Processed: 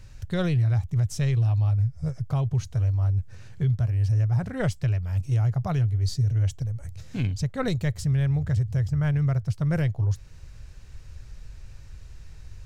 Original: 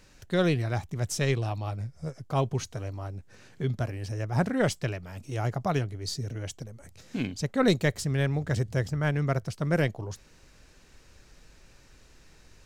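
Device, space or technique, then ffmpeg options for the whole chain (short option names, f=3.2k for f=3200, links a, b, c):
car stereo with a boomy subwoofer: -af "lowshelf=f=160:t=q:w=1.5:g=14,alimiter=limit=-17dB:level=0:latency=1:release=266"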